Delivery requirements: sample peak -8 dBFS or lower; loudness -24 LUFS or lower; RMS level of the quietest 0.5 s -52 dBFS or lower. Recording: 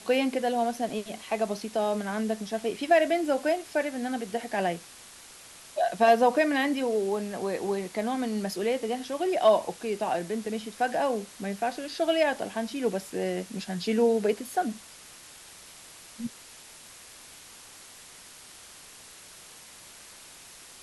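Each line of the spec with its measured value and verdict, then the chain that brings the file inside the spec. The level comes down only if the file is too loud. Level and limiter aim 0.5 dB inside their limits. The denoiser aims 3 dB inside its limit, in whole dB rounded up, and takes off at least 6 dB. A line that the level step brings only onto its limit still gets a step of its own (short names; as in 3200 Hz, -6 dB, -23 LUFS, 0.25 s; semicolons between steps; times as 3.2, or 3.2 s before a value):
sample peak -9.5 dBFS: OK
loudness -28.0 LUFS: OK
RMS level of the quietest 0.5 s -49 dBFS: fail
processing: denoiser 6 dB, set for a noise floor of -49 dBFS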